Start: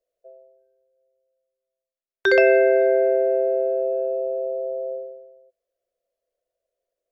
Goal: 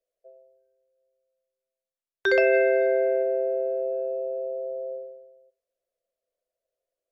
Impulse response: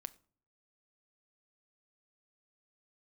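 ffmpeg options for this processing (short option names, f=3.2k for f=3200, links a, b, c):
-filter_complex "[0:a]asplit=3[a][b][c];[a]afade=t=out:st=2.52:d=0.02[d];[b]equalizer=f=3.5k:w=0.43:g=5.5,afade=t=in:st=2.52:d=0.02,afade=t=out:st=3.22:d=0.02[e];[c]afade=t=in:st=3.22:d=0.02[f];[d][e][f]amix=inputs=3:normalize=0[g];[1:a]atrim=start_sample=2205,atrim=end_sample=3528,asetrate=27783,aresample=44100[h];[g][h]afir=irnorm=-1:irlink=0,volume=-2.5dB"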